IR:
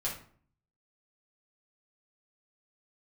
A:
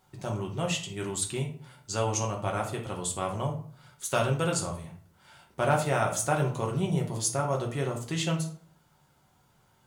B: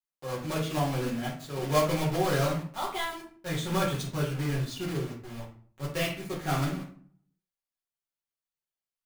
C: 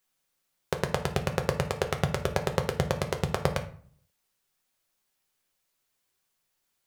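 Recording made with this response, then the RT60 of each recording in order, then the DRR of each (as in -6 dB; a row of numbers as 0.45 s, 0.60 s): B; 0.50 s, 0.50 s, 0.50 s; -0.5 dB, -6.0 dB, 4.5 dB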